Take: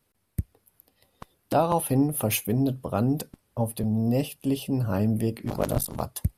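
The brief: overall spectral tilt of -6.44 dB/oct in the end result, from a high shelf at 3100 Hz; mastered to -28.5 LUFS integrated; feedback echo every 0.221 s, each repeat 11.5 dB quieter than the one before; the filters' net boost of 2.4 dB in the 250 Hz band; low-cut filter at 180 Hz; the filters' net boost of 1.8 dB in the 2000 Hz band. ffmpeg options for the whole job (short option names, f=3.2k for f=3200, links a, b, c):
-af "highpass=180,equalizer=f=250:t=o:g=4,equalizer=f=2k:t=o:g=5.5,highshelf=f=3.1k:g=-6.5,aecho=1:1:221|442|663:0.266|0.0718|0.0194,volume=-2.5dB"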